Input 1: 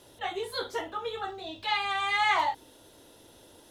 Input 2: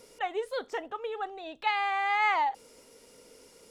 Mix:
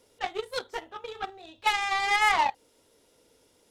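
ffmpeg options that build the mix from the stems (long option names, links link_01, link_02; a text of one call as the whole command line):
ffmpeg -i stem1.wav -i stem2.wav -filter_complex "[0:a]alimiter=limit=-22.5dB:level=0:latency=1:release=286,volume=0.5dB[link_01];[1:a]volume=-1,volume=3dB[link_02];[link_01][link_02]amix=inputs=2:normalize=0,aeval=exprs='0.282*(cos(1*acos(clip(val(0)/0.282,-1,1)))-cos(1*PI/2))+0.0316*(cos(7*acos(clip(val(0)/0.282,-1,1)))-cos(7*PI/2))':channel_layout=same" out.wav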